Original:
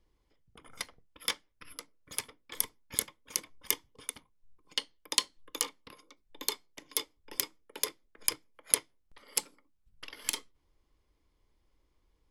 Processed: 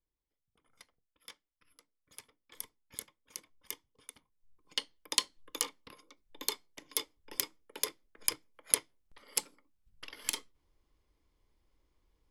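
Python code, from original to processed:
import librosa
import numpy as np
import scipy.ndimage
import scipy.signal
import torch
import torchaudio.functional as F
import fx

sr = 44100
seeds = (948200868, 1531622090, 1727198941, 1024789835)

y = fx.gain(x, sr, db=fx.line((1.73, -19.0), (2.56, -12.0), (4.05, -12.0), (4.79, -1.5)))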